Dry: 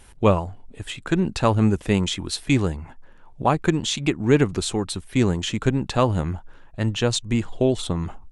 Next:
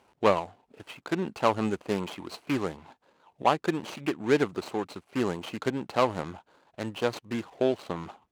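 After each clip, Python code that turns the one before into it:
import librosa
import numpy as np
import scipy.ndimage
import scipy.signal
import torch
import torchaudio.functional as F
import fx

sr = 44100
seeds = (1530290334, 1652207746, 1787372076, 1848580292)

y = scipy.signal.medfilt(x, 25)
y = fx.weighting(y, sr, curve='A')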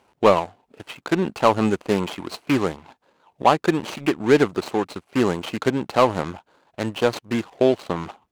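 y = fx.leveller(x, sr, passes=1)
y = F.gain(torch.from_numpy(y), 4.5).numpy()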